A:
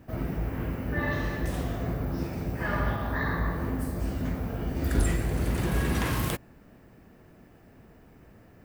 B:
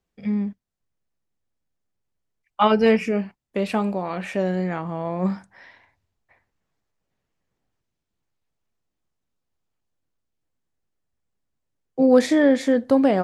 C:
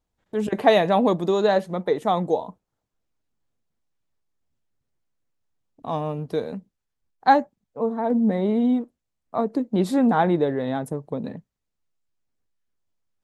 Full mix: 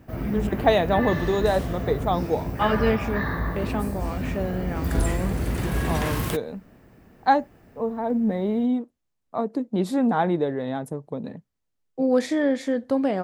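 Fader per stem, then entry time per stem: +1.5, -5.5, -2.5 dB; 0.00, 0.00, 0.00 s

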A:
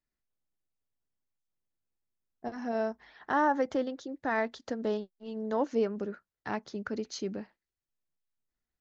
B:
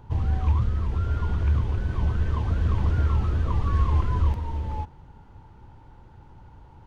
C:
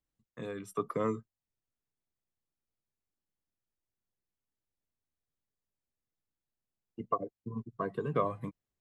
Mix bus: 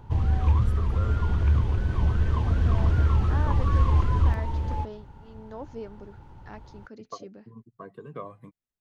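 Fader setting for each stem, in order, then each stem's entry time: -10.0, +1.0, -8.0 dB; 0.00, 0.00, 0.00 s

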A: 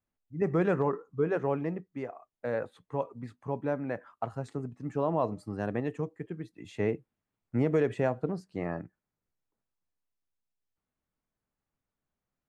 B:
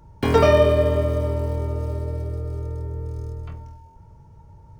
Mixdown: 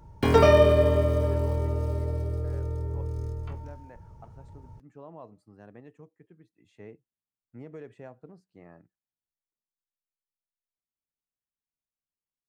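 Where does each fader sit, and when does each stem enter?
-17.0, -2.0 dB; 0.00, 0.00 s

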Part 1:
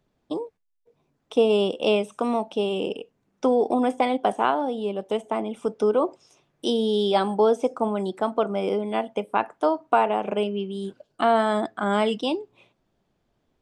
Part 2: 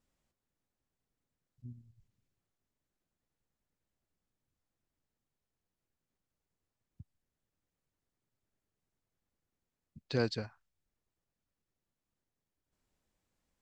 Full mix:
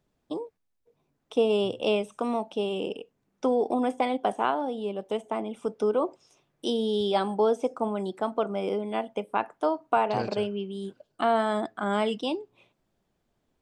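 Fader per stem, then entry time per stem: -4.0, -2.5 dB; 0.00, 0.00 s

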